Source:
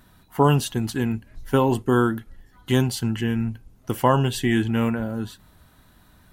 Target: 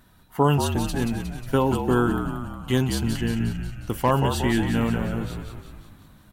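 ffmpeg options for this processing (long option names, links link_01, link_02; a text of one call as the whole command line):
ffmpeg -i in.wav -filter_complex "[0:a]asplit=9[link_01][link_02][link_03][link_04][link_05][link_06][link_07][link_08][link_09];[link_02]adelay=180,afreqshift=-54,volume=-6.5dB[link_10];[link_03]adelay=360,afreqshift=-108,volume=-11.1dB[link_11];[link_04]adelay=540,afreqshift=-162,volume=-15.7dB[link_12];[link_05]adelay=720,afreqshift=-216,volume=-20.2dB[link_13];[link_06]adelay=900,afreqshift=-270,volume=-24.8dB[link_14];[link_07]adelay=1080,afreqshift=-324,volume=-29.4dB[link_15];[link_08]adelay=1260,afreqshift=-378,volume=-34dB[link_16];[link_09]adelay=1440,afreqshift=-432,volume=-38.6dB[link_17];[link_01][link_10][link_11][link_12][link_13][link_14][link_15][link_16][link_17]amix=inputs=9:normalize=0,asettb=1/sr,asplit=3[link_18][link_19][link_20];[link_18]atrim=end=2.774[link_21];[link_19]atrim=start=2.77:end=4.11,asetpts=PTS-STARTPTS,afade=type=in:duration=0.004:curve=qsin,afade=type=out:start_time=1.336:duration=0.004:curve=qsin,volume=11dB,asoftclip=hard,volume=-11dB[link_22];[link_20]atrim=start=4.106[link_23];[link_21][link_22]acrossfade=duration=0.004:curve1=hsin:curve2=qsin[link_24];[link_24][link_23]acrossfade=duration=0.004:curve1=qsin:curve2=hsin,volume=-2dB" out.wav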